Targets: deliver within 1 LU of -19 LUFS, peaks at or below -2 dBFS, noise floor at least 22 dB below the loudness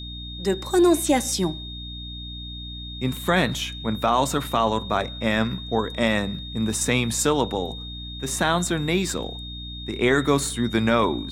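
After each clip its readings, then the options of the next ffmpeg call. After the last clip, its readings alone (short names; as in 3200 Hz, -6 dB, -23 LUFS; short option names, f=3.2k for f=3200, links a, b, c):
hum 60 Hz; harmonics up to 300 Hz; hum level -35 dBFS; steady tone 3700 Hz; tone level -36 dBFS; loudness -23.5 LUFS; peak -7.5 dBFS; loudness target -19.0 LUFS
-> -af "bandreject=f=60:t=h:w=4,bandreject=f=120:t=h:w=4,bandreject=f=180:t=h:w=4,bandreject=f=240:t=h:w=4,bandreject=f=300:t=h:w=4"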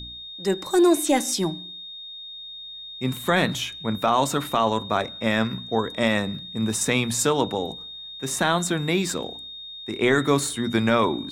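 hum none; steady tone 3700 Hz; tone level -36 dBFS
-> -af "bandreject=f=3.7k:w=30"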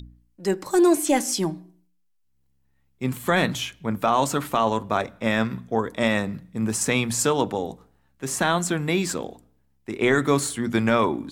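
steady tone none; loudness -23.5 LUFS; peak -8.0 dBFS; loudness target -19.0 LUFS
-> -af "volume=4.5dB"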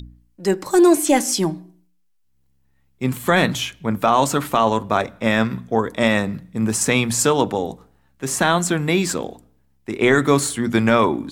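loudness -19.0 LUFS; peak -3.5 dBFS; noise floor -62 dBFS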